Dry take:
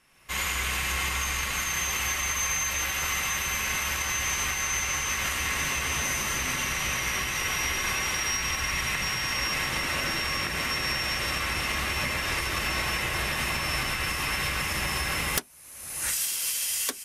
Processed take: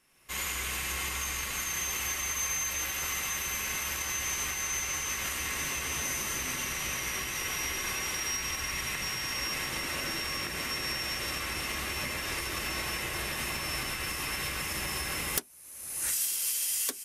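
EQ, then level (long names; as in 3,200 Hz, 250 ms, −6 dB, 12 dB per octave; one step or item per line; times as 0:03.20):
parametric band 350 Hz +5 dB 1.2 octaves
high-shelf EQ 5,600 Hz +8 dB
−7.5 dB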